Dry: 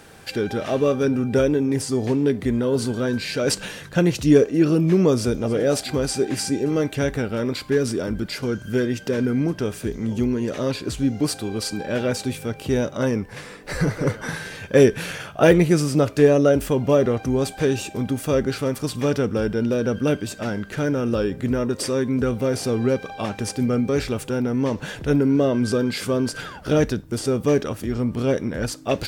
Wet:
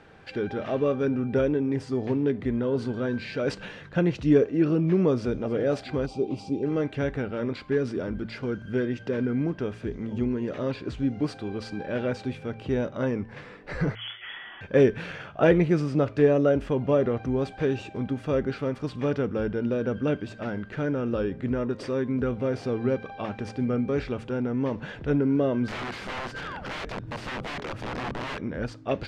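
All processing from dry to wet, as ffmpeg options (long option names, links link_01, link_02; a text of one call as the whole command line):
ffmpeg -i in.wav -filter_complex "[0:a]asettb=1/sr,asplit=3[link_01][link_02][link_03];[link_01]atrim=end=6.064[link_04];[link_02]atrim=start=6.06:end=6.63,asetpts=PTS-STARTPTS,afade=type=in:duration=0.004:curve=qsin,afade=type=out:start_time=0.566:duration=0.004:curve=qsin,asuperstop=centerf=1700:order=4:qfactor=1.1,highshelf=frequency=4100:gain=-7.5[link_05];[link_03]atrim=start=6.626[link_06];[link_04][link_05]acrossfade=duration=0.004:curve1=hsin:curve2=qsin[link_07];[link_07][link_06]acrossfade=duration=0.004:curve1=qsin:curve2=hsin,asettb=1/sr,asplit=3[link_08][link_09][link_10];[link_08]atrim=end=13.954[link_11];[link_09]atrim=start=13.95:end=14.61,asetpts=PTS-STARTPTS,afade=type=in:duration=0.004:curve=qsin,afade=type=out:start_time=0.656:duration=0.004:curve=qsin,highpass=frequency=110:width=0.5412,highpass=frequency=110:width=1.3066,aeval=exprs='(tanh(17.8*val(0)+0.2)-tanh(0.2))/17.8':channel_layout=same,lowpass=frequency=3000:width_type=q:width=0.5098,lowpass=frequency=3000:width_type=q:width=0.6013,lowpass=frequency=3000:width_type=q:width=0.9,lowpass=frequency=3000:width_type=q:width=2.563,afreqshift=-3500[link_12];[link_10]atrim=start=14.606[link_13];[link_11][link_12]acrossfade=duration=0.004:curve1=hsin:curve2=qsin[link_14];[link_14][link_13]acrossfade=duration=0.004:curve1=qsin:curve2=hsin,asettb=1/sr,asplit=3[link_15][link_16][link_17];[link_15]atrim=end=25.684[link_18];[link_16]atrim=start=25.68:end=28.41,asetpts=PTS-STARTPTS,afade=type=in:duration=0.004:curve=qsin,afade=type=out:start_time=2.726:duration=0.004:curve=qsin,bandreject=frequency=60:width_type=h:width=6,bandreject=frequency=120:width_type=h:width=6,acompressor=mode=upward:threshold=-20dB:ratio=2.5:attack=3.2:release=140:knee=2.83:detection=peak,aeval=exprs='(mod(11.9*val(0)+1,2)-1)/11.9':channel_layout=same[link_19];[link_17]atrim=start=28.406[link_20];[link_18][link_19]acrossfade=duration=0.004:curve1=hsin:curve2=qsin[link_21];[link_21][link_20]acrossfade=duration=0.004:curve1=qsin:curve2=hsin,lowpass=2800,bandreject=frequency=112.2:width_type=h:width=4,bandreject=frequency=224.4:width_type=h:width=4,volume=-5dB" out.wav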